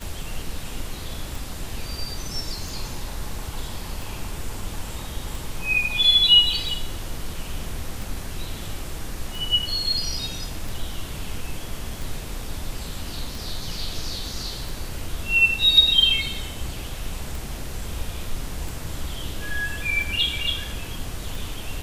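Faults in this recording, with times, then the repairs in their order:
tick 45 rpm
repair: de-click

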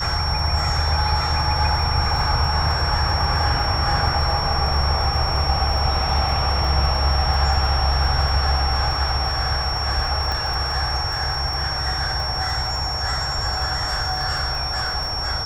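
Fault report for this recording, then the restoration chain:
crackle 28 per s -28 dBFS
whine 5.5 kHz -25 dBFS
10.32 s: pop -12 dBFS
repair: de-click; band-stop 5.5 kHz, Q 30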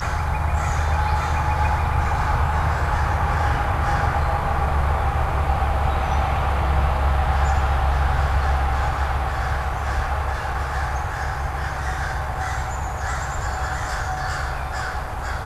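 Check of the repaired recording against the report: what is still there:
nothing left

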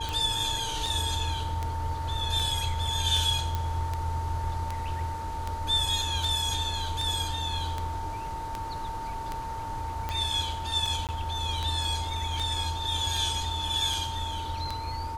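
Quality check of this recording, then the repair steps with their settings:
tick 78 rpm
whine 900 Hz -34 dBFS
3.55 s: pop -16 dBFS
11.07–11.09 s: dropout 18 ms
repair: de-click; band-stop 900 Hz, Q 30; interpolate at 11.07 s, 18 ms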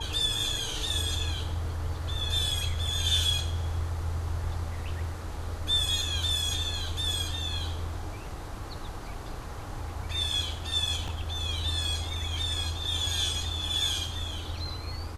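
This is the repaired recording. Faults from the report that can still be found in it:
nothing left

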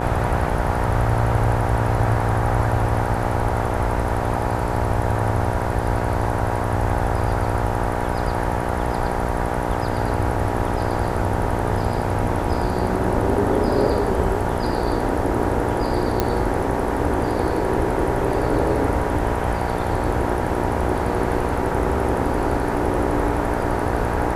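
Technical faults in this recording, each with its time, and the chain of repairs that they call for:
buzz 60 Hz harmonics 16 -25 dBFS
16.20 s: pop -5 dBFS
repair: de-click; de-hum 60 Hz, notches 16

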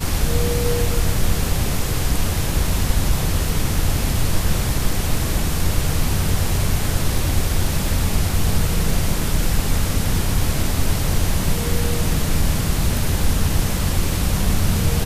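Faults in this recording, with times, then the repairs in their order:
12.42 s: dropout 2.9 ms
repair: interpolate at 12.42 s, 2.9 ms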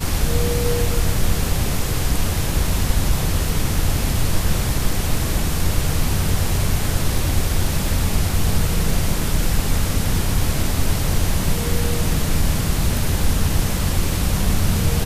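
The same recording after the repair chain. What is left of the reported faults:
nothing left

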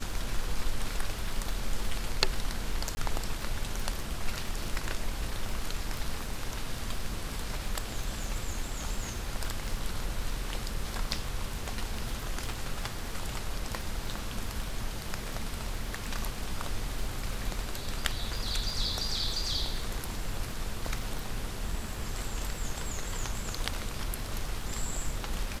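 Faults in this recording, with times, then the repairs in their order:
crackle 20 per s -34 dBFS
2.95–2.97 s: dropout 20 ms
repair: de-click; interpolate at 2.95 s, 20 ms

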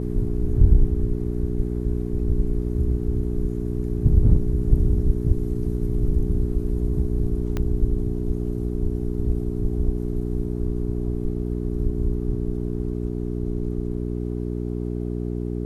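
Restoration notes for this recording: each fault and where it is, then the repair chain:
hum 60 Hz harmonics 7 -27 dBFS
7.57 s: pop -14 dBFS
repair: de-click; de-hum 60 Hz, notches 7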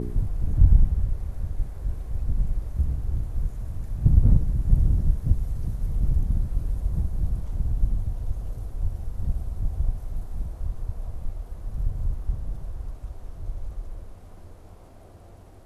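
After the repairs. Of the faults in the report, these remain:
7.57 s: pop

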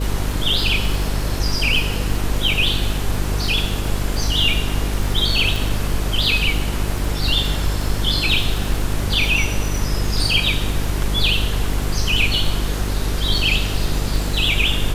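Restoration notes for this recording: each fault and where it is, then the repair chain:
buzz 50 Hz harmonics 9 -23 dBFS
crackle 45 per s -24 dBFS
5.56 s: pop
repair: de-click; de-hum 50 Hz, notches 9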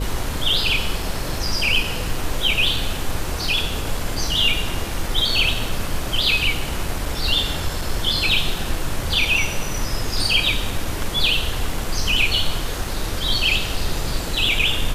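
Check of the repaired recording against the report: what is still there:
nothing left

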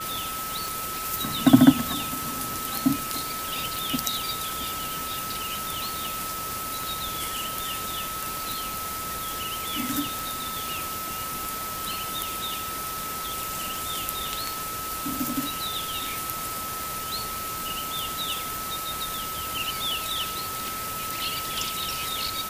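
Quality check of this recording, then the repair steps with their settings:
tick 78 rpm
whine 1.3 kHz -33 dBFS
10.19 s: pop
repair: de-click; band-stop 1.3 kHz, Q 30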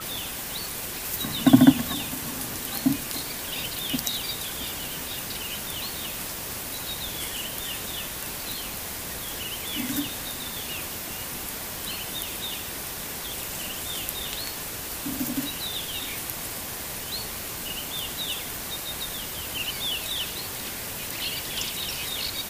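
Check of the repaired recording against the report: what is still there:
nothing left

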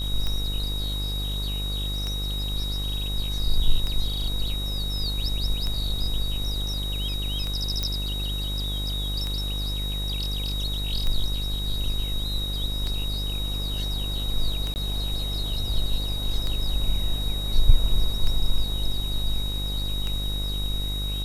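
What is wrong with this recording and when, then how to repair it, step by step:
buzz 50 Hz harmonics 29 -29 dBFS
tick 33 1/3 rpm -16 dBFS
whine 3.8 kHz -31 dBFS
7.83 s: pop -12 dBFS
14.74–14.76 s: dropout 19 ms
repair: de-click; band-stop 3.8 kHz, Q 30; de-hum 50 Hz, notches 29; interpolate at 14.74 s, 19 ms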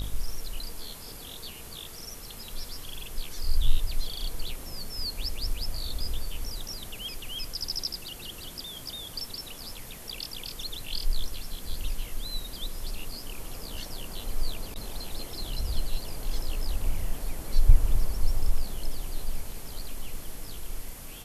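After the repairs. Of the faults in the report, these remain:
nothing left

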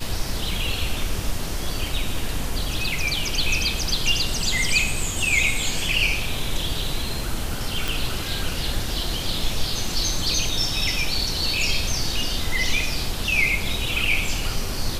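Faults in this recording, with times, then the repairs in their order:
7.88 s: pop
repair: de-click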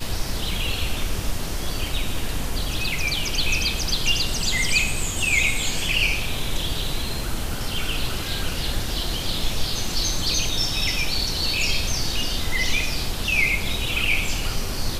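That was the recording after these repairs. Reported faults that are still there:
nothing left

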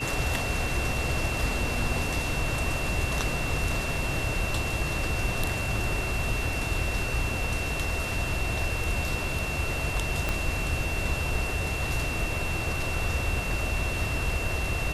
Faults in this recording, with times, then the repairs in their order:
whine 2.7 kHz -33 dBFS
10.29 s: pop -12 dBFS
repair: de-click; band-stop 2.7 kHz, Q 30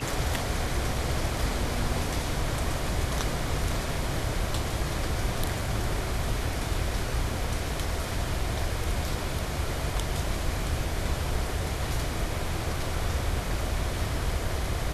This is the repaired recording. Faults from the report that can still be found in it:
10.29 s: pop

